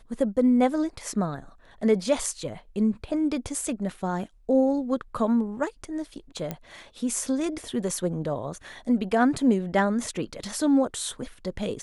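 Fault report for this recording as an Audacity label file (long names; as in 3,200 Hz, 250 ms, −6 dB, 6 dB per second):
6.510000	6.510000	click −16 dBFS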